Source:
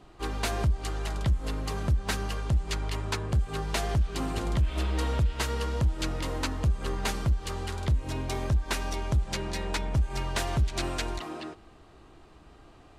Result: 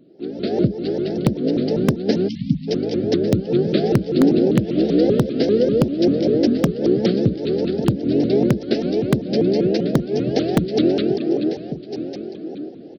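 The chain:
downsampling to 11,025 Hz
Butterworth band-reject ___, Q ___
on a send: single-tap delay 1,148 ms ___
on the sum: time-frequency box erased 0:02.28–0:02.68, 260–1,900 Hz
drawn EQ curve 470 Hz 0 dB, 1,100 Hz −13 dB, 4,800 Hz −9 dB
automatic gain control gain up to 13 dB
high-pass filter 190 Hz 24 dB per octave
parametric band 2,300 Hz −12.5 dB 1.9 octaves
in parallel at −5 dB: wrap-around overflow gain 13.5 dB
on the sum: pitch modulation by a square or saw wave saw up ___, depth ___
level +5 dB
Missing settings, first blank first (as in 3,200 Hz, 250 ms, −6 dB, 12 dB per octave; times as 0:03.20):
1,000 Hz, 0.99, −11.5 dB, 5.1 Hz, 250 cents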